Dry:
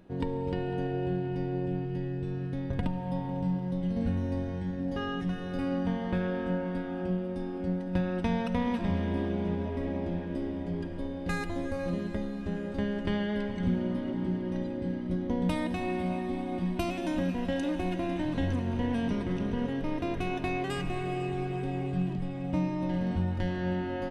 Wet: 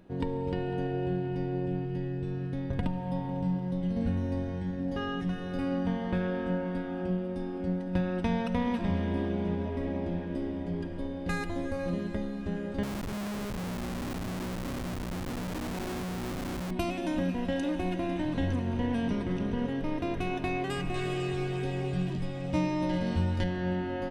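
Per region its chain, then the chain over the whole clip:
12.83–16.71 bell 75 Hz -6 dB 0.68 oct + compressor 3:1, threshold -31 dBFS + Schmitt trigger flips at -35 dBFS
20.94–23.44 bell 6500 Hz +9 dB 2.4 oct + doubler 13 ms -6 dB
whole clip: dry

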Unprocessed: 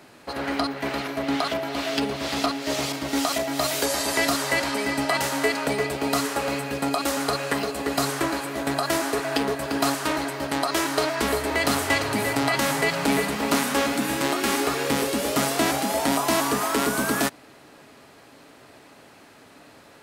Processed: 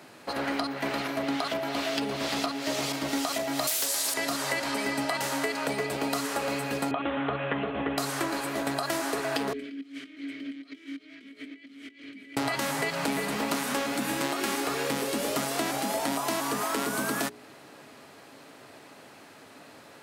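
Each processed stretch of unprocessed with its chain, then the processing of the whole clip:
3.67–4.14 RIAA curve recording + Doppler distortion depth 0.25 ms
6.91–7.98 steep low-pass 3500 Hz 96 dB/oct + low shelf 150 Hz +9.5 dB
9.53–12.37 low shelf 190 Hz -9 dB + negative-ratio compressor -31 dBFS, ratio -0.5 + vowel filter i
whole clip: HPF 100 Hz; notches 60/120/180/240/300/360/420 Hz; compressor, threshold -26 dBFS

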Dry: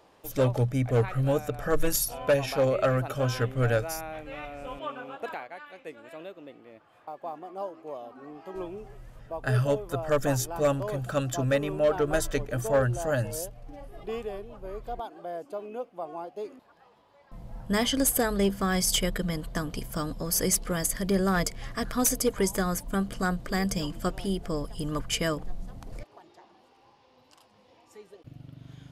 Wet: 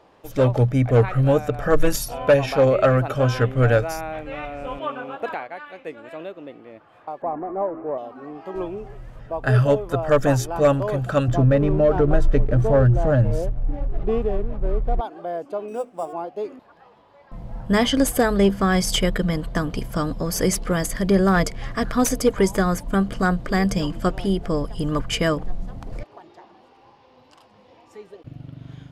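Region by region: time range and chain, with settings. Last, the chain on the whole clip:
7.22–7.98 G.711 law mismatch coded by mu + LPF 1800 Hz 24 dB/oct + tilt shelf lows +3 dB
11.28–15.01 tilt -3 dB/oct + compressor 2:1, threshold -23 dBFS + backlash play -45 dBFS
15.68–16.13 notches 50/100/150/200/250/300/350/400 Hz + sample-rate reducer 8400 Hz
whole clip: LPF 2900 Hz 6 dB/oct; AGC gain up to 3 dB; gain +5 dB

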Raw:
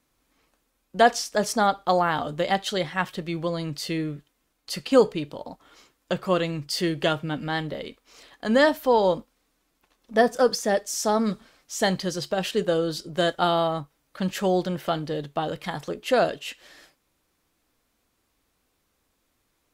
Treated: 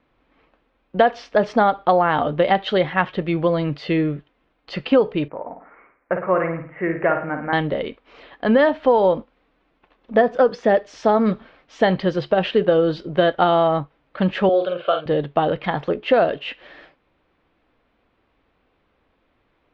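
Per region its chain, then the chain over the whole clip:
5.28–7.53 steep low-pass 2300 Hz 72 dB/oct + low shelf 480 Hz -11 dB + flutter echo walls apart 9.3 m, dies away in 0.47 s
14.49–15.06 HPF 360 Hz + fixed phaser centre 1300 Hz, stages 8 + doubler 46 ms -6.5 dB
whole clip: LPF 3100 Hz 24 dB/oct; bell 560 Hz +3.5 dB 1.5 oct; compressor 6:1, threshold -19 dBFS; gain +7 dB

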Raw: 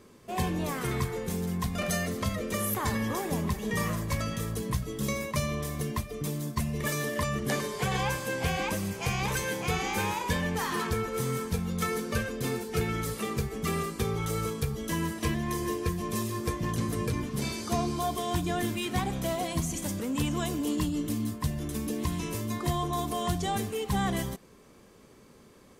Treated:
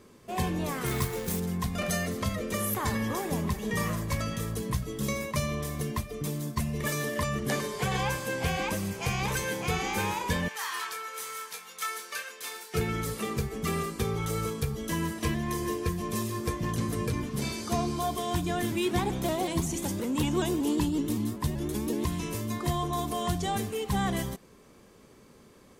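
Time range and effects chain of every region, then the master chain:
0.86–1.4 high shelf 9100 Hz +10 dB + companded quantiser 4-bit
10.48–12.74 HPF 1200 Hz + doubler 25 ms -7.5 dB
18.72–22.05 small resonant body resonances 360/880/3600 Hz, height 9 dB + shaped vibrato saw up 5.3 Hz, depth 100 cents
whole clip: dry

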